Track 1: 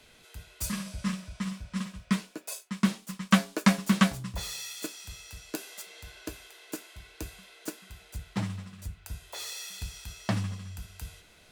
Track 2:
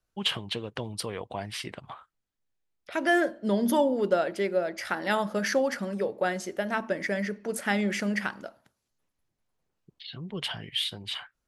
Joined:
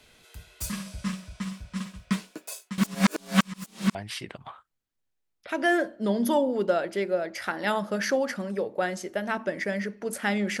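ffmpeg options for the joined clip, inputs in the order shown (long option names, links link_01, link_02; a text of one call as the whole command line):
ffmpeg -i cue0.wav -i cue1.wav -filter_complex "[0:a]apad=whole_dur=10.6,atrim=end=10.6,asplit=2[link_01][link_02];[link_01]atrim=end=2.782[link_03];[link_02]atrim=start=2.778:end=3.952,asetpts=PTS-STARTPTS,areverse[link_04];[1:a]atrim=start=1.378:end=8.03[link_05];[link_03][link_04]acrossfade=duration=0.004:curve1=hsin:curve2=hsin[link_06];[link_06][link_05]acrossfade=duration=0.004:curve1=hsin:curve2=hsin" out.wav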